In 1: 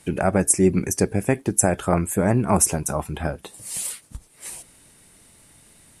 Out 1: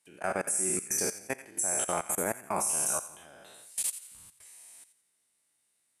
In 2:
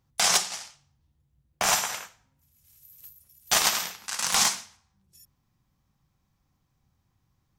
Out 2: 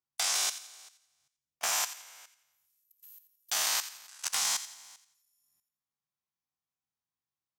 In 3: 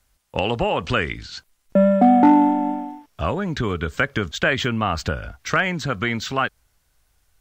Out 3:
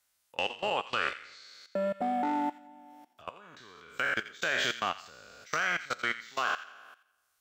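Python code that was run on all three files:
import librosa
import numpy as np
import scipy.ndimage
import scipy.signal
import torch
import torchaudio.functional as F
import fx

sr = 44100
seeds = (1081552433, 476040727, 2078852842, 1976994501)

p1 = fx.spec_trails(x, sr, decay_s=1.01)
p2 = fx.highpass(p1, sr, hz=800.0, slope=6)
p3 = fx.high_shelf(p2, sr, hz=4800.0, db=3.5)
p4 = fx.level_steps(p3, sr, step_db=23)
p5 = p4 + fx.echo_wet_highpass(p4, sr, ms=86, feedback_pct=35, hz=1400.0, wet_db=-12.0, dry=0)
y = F.gain(torch.from_numpy(p5), -6.5).numpy()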